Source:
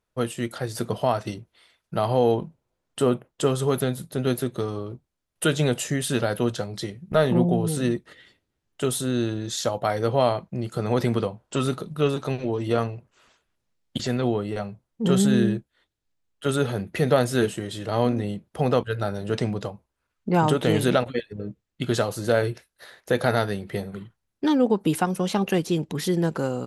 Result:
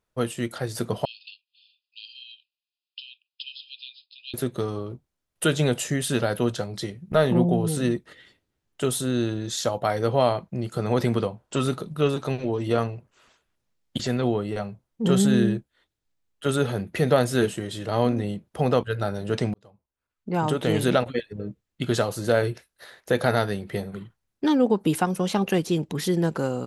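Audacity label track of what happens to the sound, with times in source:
1.050000	4.340000	linear-phase brick-wall band-pass 2,400–5,200 Hz
19.540000	20.980000	fade in

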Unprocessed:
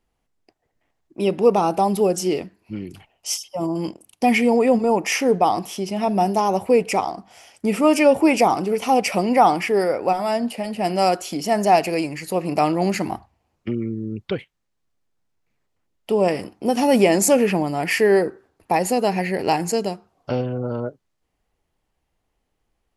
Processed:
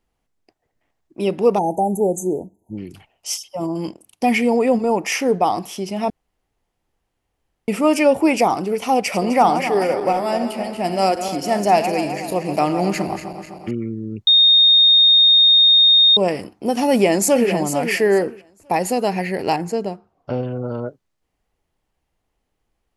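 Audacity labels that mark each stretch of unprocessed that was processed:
1.590000	2.780000	time-frequency box erased 960–6,100 Hz
6.100000	7.680000	fill with room tone
8.980000	13.710000	feedback delay that plays each chunk backwards 128 ms, feedback 73%, level −10 dB
14.270000	16.170000	beep over 3,690 Hz −8.5 dBFS
16.900000	17.510000	delay throw 450 ms, feedback 20%, level −8 dB
19.560000	20.430000	high-shelf EQ 2,600 Hz −11.5 dB

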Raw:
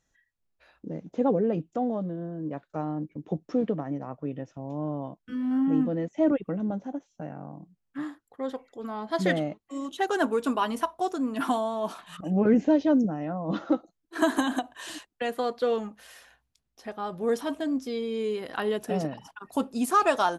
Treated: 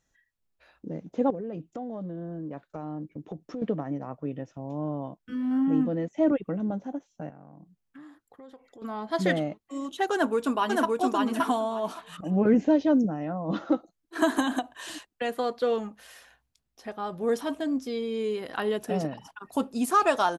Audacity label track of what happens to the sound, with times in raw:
1.300000	3.620000	downward compressor, threshold −32 dBFS
7.290000	8.820000	downward compressor 5 to 1, threshold −46 dBFS
10.120000	10.990000	delay throw 570 ms, feedback 15%, level −1.5 dB

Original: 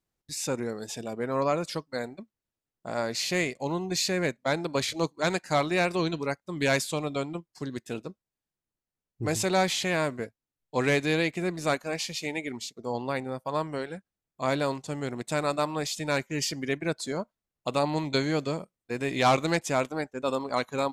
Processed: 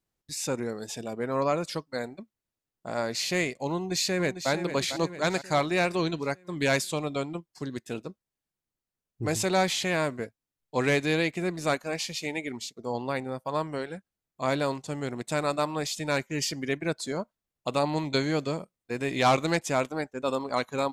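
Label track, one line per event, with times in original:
3.740000	4.510000	delay throw 450 ms, feedback 55%, level −9.5 dB

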